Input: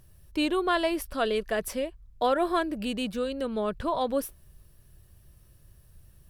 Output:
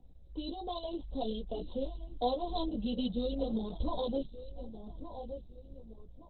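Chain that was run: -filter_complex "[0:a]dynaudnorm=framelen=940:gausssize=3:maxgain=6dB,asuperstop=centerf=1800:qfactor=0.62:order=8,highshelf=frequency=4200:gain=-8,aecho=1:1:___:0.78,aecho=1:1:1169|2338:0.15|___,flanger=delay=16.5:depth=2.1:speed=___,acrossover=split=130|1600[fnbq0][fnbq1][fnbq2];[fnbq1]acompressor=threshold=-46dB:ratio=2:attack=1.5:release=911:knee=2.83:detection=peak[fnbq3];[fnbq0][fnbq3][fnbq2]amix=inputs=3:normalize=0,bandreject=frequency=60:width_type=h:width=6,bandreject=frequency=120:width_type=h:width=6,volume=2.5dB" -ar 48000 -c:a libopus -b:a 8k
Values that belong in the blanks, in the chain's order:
4, 0.0269, 1.3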